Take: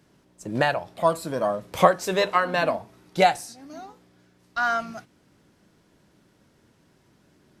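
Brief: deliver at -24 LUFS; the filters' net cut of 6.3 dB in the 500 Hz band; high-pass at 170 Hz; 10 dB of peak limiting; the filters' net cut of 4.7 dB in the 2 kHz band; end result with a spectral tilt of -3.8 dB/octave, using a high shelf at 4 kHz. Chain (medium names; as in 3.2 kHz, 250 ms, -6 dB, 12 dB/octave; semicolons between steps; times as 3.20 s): high-pass 170 Hz; peaking EQ 500 Hz -8 dB; peaking EQ 2 kHz -7.5 dB; treble shelf 4 kHz +7 dB; trim +6.5 dB; peak limiter -10 dBFS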